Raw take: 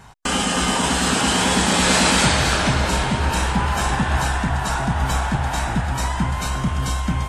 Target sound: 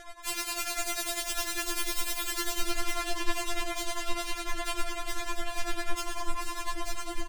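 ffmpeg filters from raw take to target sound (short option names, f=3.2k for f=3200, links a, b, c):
-filter_complex "[0:a]acontrast=75,aeval=exprs='0.15*(abs(mod(val(0)/0.15+3,4)-2)-1)':c=same,aecho=1:1:134.1|256.6:0.562|0.398,acompressor=threshold=-26dB:ratio=6,asettb=1/sr,asplit=3[a][b][c];[a]atrim=end=1.314[d];[b]atrim=start=1.31:end=3.67,asetpts=PTS-STARTPTS,afade=t=in:d=0.004:c=qsin,afade=t=out:st=2.356:d=0.004:c=qsin,lowshelf=f=480:g=7[e];[c]atrim=start=3.666[f];[d][e]acrossfade=d=0.004:c1=hsin:c2=qsin[g];[g][f]acrossfade=d=0.004:c1=qsin:c2=hsin,tremolo=f=10:d=0.76,asubboost=boost=6:cutoff=160,afftfilt=real='re*4*eq(mod(b,16),0)':imag='im*4*eq(mod(b,16),0)':win_size=2048:overlap=0.75"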